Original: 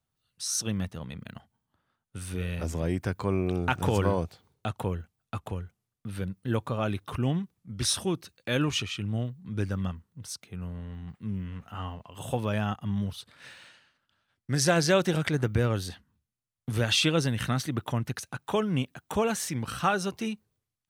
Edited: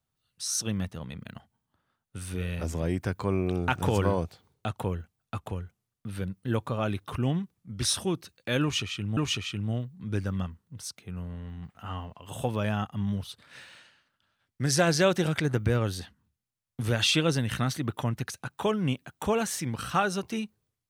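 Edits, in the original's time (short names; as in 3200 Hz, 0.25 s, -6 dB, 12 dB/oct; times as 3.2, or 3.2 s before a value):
8.62–9.17 loop, 2 plays
11.2–11.64 cut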